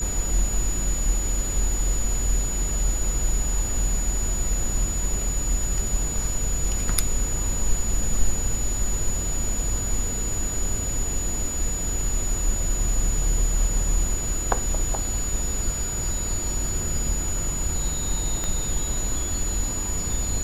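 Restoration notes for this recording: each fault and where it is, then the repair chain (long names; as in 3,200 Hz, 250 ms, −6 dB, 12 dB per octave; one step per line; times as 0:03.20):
whistle 6,900 Hz −28 dBFS
0:18.44: click −14 dBFS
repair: click removal
notch filter 6,900 Hz, Q 30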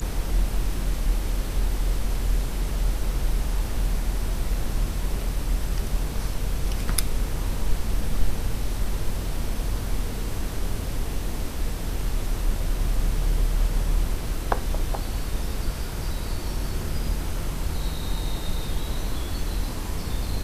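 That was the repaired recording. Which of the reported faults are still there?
0:18.44: click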